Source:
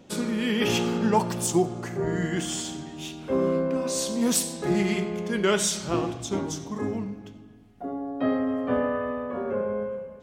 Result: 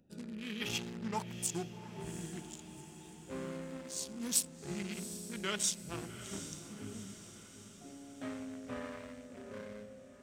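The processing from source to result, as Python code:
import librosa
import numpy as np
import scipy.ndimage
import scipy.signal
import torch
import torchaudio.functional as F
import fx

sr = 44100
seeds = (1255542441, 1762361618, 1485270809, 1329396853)

y = fx.wiener(x, sr, points=41)
y = fx.tone_stack(y, sr, knobs='5-5-5')
y = fx.echo_diffused(y, sr, ms=771, feedback_pct=56, wet_db=-12)
y = y * librosa.db_to_amplitude(2.0)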